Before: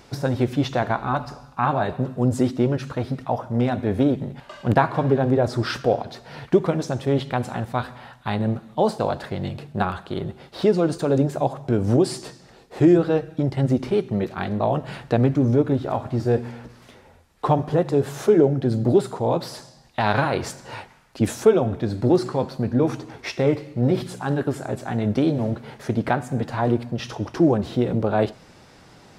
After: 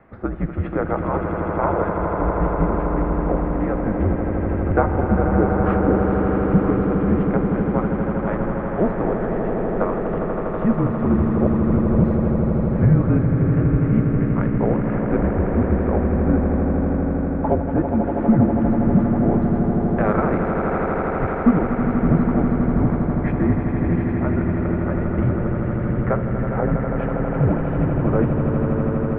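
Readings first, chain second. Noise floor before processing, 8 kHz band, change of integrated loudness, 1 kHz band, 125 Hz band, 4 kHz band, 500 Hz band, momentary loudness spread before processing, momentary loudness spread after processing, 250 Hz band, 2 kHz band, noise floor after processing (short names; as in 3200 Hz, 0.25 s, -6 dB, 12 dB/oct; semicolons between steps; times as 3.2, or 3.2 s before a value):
-50 dBFS, under -40 dB, +2.5 dB, +1.0 dB, +4.5 dB, under -20 dB, 0.0 dB, 11 LU, 5 LU, +4.5 dB, +0.5 dB, -25 dBFS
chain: swelling echo 81 ms, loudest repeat 8, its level -8 dB; mistuned SSB -200 Hz 240–2200 Hz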